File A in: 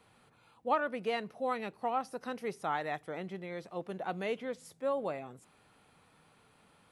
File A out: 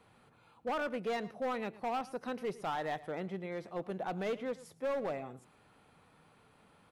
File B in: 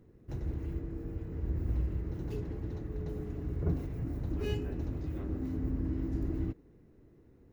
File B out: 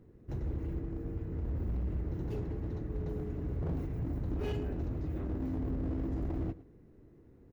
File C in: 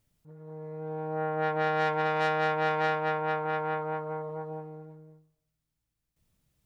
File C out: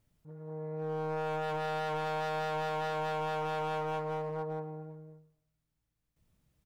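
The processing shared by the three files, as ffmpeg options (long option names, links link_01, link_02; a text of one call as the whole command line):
ffmpeg -i in.wav -filter_complex "[0:a]highshelf=frequency=2600:gain=-6,alimiter=level_in=1dB:limit=-24dB:level=0:latency=1:release=22,volume=-1dB,volume=32dB,asoftclip=hard,volume=-32dB,asplit=2[link_01][link_02];[link_02]adelay=110.8,volume=-18dB,highshelf=frequency=4000:gain=-2.49[link_03];[link_01][link_03]amix=inputs=2:normalize=0,volume=1.5dB" out.wav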